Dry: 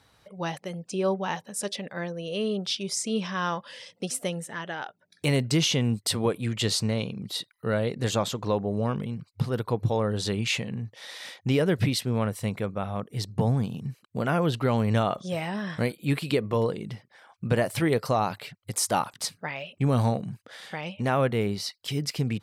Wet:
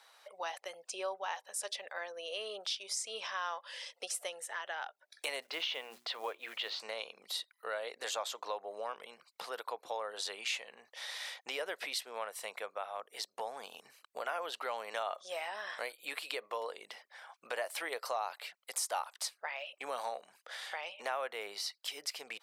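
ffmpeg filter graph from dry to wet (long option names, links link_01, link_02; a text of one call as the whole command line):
ffmpeg -i in.wav -filter_complex "[0:a]asettb=1/sr,asplit=3[link_01][link_02][link_03];[link_01]atrim=end=5.424[link_04];[link_02]atrim=start=5.42:end=6.8,asetpts=PTS-STARTPTS,afade=type=in:duration=0.004:curve=qsin,afade=type=out:start_time=1.376:duration=0.004:curve=qsin,lowpass=frequency=3700:width=0.5412,lowpass=frequency=3700:width=1.3066,bandreject=frequency=60:width_type=h:width=6,bandreject=frequency=120:width_type=h:width=6,bandreject=frequency=180:width_type=h:width=6,bandreject=frequency=240:width_type=h:width=6,bandreject=frequency=300:width_type=h:width=6,bandreject=frequency=360:width_type=h:width=6,acrusher=bits=8:mode=log:mix=0:aa=0.000001[link_05];[link_03]atrim=start=6.796[link_06];[link_04][link_05]acrossfade=duration=0.004:curve1=hsin:curve2=qsin[link_07];[link_07][link_06]acrossfade=duration=0.004:curve1=qsin:curve2=hsin,highpass=frequency=600:width=0.5412,highpass=frequency=600:width=1.3066,acompressor=threshold=-43dB:ratio=2,volume=1.5dB" out.wav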